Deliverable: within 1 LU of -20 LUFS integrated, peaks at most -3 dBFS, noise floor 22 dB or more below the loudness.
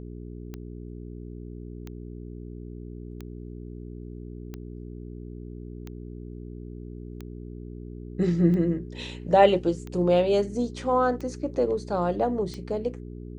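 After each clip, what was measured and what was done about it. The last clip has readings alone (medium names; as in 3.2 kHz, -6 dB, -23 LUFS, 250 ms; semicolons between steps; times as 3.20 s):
clicks found 10; hum 60 Hz; highest harmonic 420 Hz; hum level -37 dBFS; loudness -25.0 LUFS; peak level -5.5 dBFS; loudness target -20.0 LUFS
-> de-click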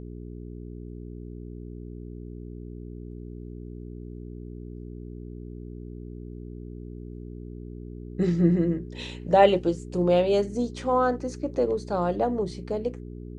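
clicks found 0; hum 60 Hz; highest harmonic 420 Hz; hum level -37 dBFS
-> de-hum 60 Hz, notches 7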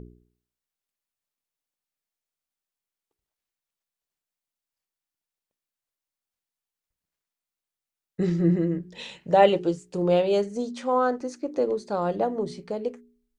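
hum not found; loudness -25.0 LUFS; peak level -5.5 dBFS; loudness target -20.0 LUFS
-> trim +5 dB; peak limiter -3 dBFS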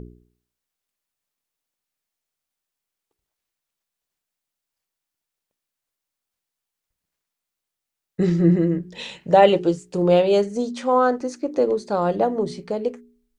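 loudness -20.5 LUFS; peak level -3.0 dBFS; noise floor -85 dBFS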